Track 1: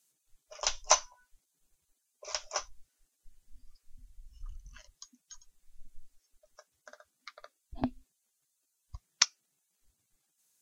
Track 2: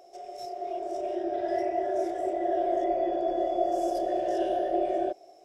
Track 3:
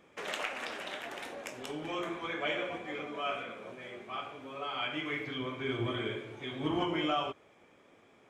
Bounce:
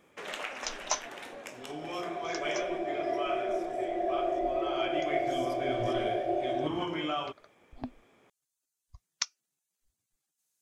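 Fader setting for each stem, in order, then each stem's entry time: -7.0, -3.5, -1.5 dB; 0.00, 1.55, 0.00 s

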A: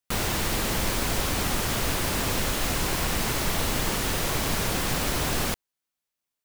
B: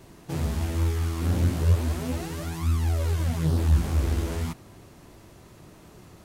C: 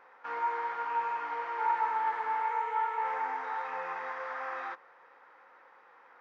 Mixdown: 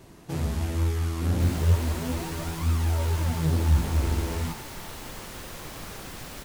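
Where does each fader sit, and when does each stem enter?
-13.5, -0.5, -14.5 dB; 1.30, 0.00, 1.30 s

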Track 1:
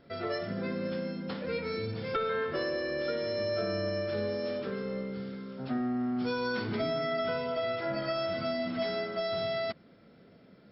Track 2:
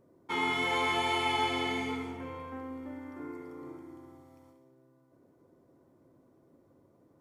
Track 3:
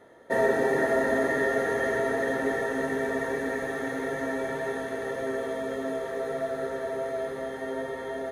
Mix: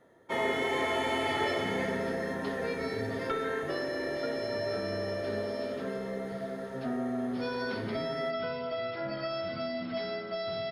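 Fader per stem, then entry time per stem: -2.5, -3.5, -8.5 dB; 1.15, 0.00, 0.00 s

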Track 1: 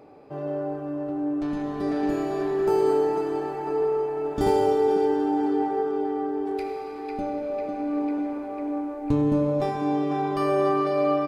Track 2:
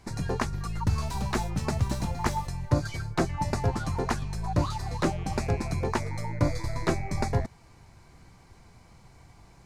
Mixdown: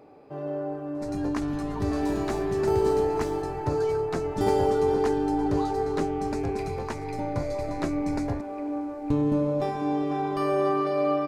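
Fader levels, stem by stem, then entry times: -2.0, -6.0 dB; 0.00, 0.95 s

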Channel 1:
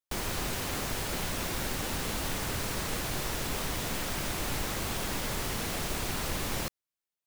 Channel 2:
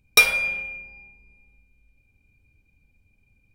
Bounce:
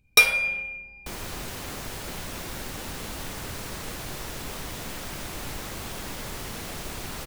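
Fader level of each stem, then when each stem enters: -2.5, -1.0 dB; 0.95, 0.00 s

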